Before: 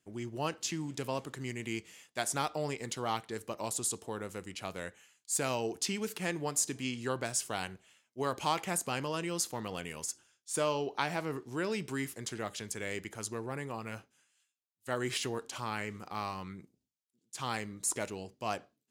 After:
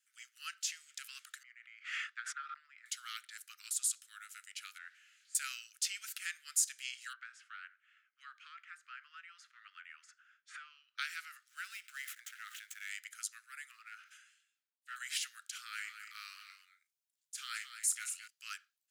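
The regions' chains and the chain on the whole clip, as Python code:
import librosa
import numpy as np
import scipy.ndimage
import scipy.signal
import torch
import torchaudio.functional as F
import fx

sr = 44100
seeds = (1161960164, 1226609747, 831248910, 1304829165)

y = fx.chain(x, sr, fx.lowpass(hz=1000.0, slope=12),
    fx.transient(attack_db=9, sustain_db=-4),
    fx.pre_swell(db_per_s=23.0), at=(1.43, 2.86))
y = fx.chain(y, sr, fx.crossing_spikes(level_db=-38.0),
    fx.lowpass(hz=1700.0, slope=12), at=(4.78, 5.35))
y = fx.chain(y, sr, fx.lowpass(hz=1300.0, slope=12),
    fx.band_squash(depth_pct=100), at=(7.13, 10.98))
y = fx.chain(y, sr, fx.median_filter(points=9),
    fx.sustainer(db_per_s=95.0), at=(11.48, 12.89))
y = fx.chain(y, sr, fx.lowpass(hz=1100.0, slope=6),
    fx.leveller(passes=1),
    fx.sustainer(db_per_s=76.0), at=(13.71, 14.96))
y = fx.chain(y, sr, fx.doubler(ms=33.0, db=-11.5),
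    fx.echo_single(ms=220, db=-9.0), at=(15.51, 18.28))
y = scipy.signal.sosfilt(scipy.signal.butter(16, 1300.0, 'highpass', fs=sr, output='sos'), y)
y = fx.high_shelf(y, sr, hz=6800.0, db=5.0)
y = y * librosa.db_to_amplitude(-3.0)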